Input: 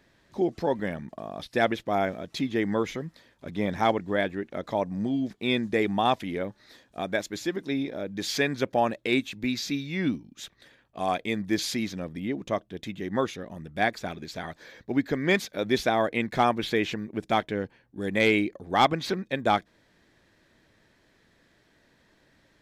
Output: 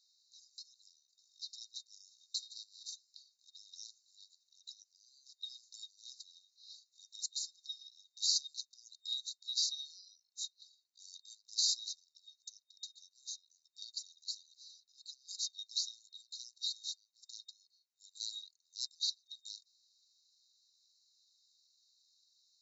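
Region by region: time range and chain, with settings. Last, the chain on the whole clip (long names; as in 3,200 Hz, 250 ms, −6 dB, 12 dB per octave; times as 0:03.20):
0:02.36–0:02.94: lower of the sound and its delayed copy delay 1.9 ms + notch filter 6,600 Hz
whole clip: brick-wall band-pass 3,700–7,500 Hz; dynamic equaliser 5,100 Hz, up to −3 dB, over −55 dBFS, Q 5.8; level +3 dB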